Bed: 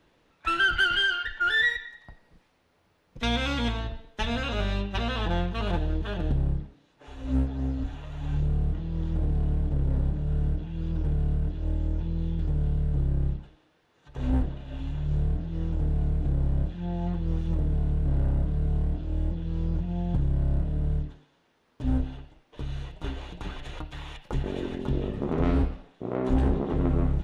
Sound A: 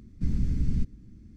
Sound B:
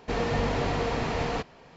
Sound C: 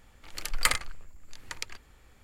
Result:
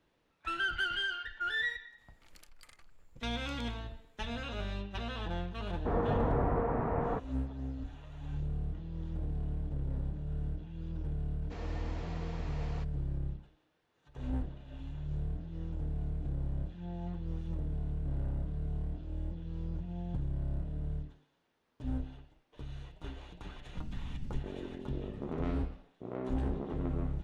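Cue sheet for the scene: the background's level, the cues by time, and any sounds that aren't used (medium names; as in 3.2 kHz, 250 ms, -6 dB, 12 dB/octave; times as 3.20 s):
bed -10 dB
1.98 s: add C -13 dB + compression 12:1, threshold -38 dBFS
5.77 s: add B -3 dB + low-pass 1.4 kHz 24 dB/octave
11.42 s: add B -17.5 dB
23.54 s: add A -14 dB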